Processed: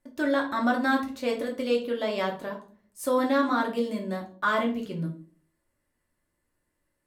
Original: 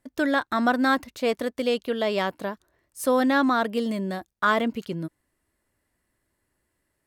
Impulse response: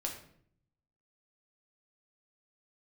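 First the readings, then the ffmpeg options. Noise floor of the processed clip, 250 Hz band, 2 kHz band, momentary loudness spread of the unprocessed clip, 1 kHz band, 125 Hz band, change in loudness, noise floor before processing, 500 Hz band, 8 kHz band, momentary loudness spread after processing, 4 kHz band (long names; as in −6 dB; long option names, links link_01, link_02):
−78 dBFS, −2.5 dB, −3.0 dB, 13 LU, −3.0 dB, −0.5 dB, −2.5 dB, −77 dBFS, −2.0 dB, −4.0 dB, 11 LU, −4.0 dB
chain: -filter_complex "[1:a]atrim=start_sample=2205,asetrate=74970,aresample=44100[link_01];[0:a][link_01]afir=irnorm=-1:irlink=0"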